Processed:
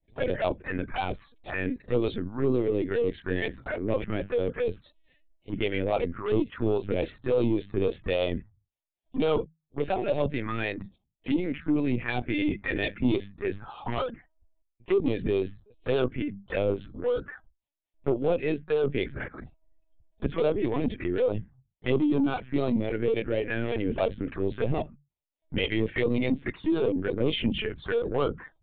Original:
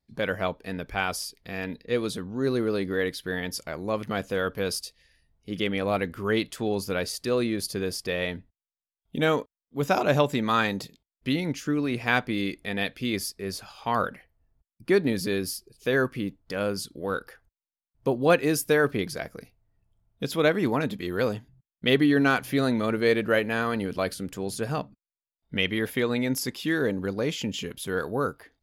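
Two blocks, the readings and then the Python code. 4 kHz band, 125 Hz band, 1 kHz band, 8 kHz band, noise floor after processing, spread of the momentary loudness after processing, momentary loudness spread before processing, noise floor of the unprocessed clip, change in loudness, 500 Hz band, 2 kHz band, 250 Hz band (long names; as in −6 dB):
−6.0 dB, −0.5 dB, −5.5 dB, below −40 dB, −82 dBFS, 8 LU, 11 LU, below −85 dBFS, −1.5 dB, −0.5 dB, −6.0 dB, −1.0 dB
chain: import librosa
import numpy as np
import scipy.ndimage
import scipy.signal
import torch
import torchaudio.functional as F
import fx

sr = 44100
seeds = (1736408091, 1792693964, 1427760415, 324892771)

y = scipy.signal.sosfilt(scipy.signal.bessel(8, 2600.0, 'lowpass', norm='mag', fs=sr, output='sos'), x)
y = fx.peak_eq(y, sr, hz=180.0, db=-7.5, octaves=0.42)
y = fx.hum_notches(y, sr, base_hz=50, count=4)
y = fx.rider(y, sr, range_db=4, speed_s=0.5)
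y = fx.harmonic_tremolo(y, sr, hz=3.6, depth_pct=70, crossover_hz=400.0)
y = 10.0 ** (-26.5 / 20.0) * np.tanh(y / 10.0 ** (-26.5 / 20.0))
y = fx.env_phaser(y, sr, low_hz=210.0, high_hz=1800.0, full_db=-29.0)
y = fx.lpc_vocoder(y, sr, seeds[0], excitation='pitch_kept', order=16)
y = y * 10.0 ** (8.5 / 20.0)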